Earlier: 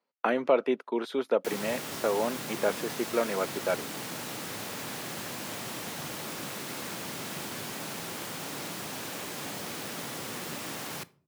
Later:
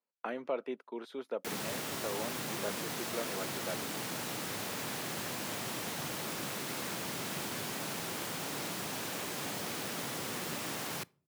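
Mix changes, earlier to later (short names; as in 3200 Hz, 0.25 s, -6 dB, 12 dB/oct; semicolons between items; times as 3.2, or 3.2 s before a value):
speech -11.5 dB; background: send -8.0 dB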